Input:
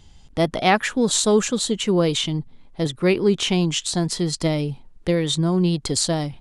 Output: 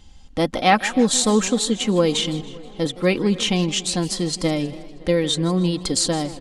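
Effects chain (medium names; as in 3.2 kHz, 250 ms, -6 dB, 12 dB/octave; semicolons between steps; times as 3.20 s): comb 3.8 ms, depth 53%; on a send: tape echo 282 ms, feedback 81%, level -20.5 dB, low-pass 3 kHz; on the sum: modulated delay 159 ms, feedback 43%, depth 195 cents, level -17 dB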